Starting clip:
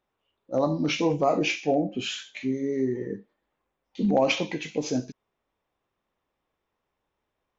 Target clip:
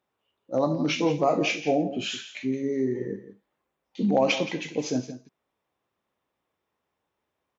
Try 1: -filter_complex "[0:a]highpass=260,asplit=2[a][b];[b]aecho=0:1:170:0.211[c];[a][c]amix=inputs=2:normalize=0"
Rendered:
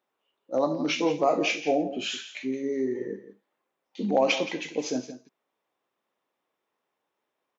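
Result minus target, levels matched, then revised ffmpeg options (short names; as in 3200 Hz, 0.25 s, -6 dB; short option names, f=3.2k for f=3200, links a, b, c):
125 Hz band -7.5 dB
-filter_complex "[0:a]highpass=82,asplit=2[a][b];[b]aecho=0:1:170:0.211[c];[a][c]amix=inputs=2:normalize=0"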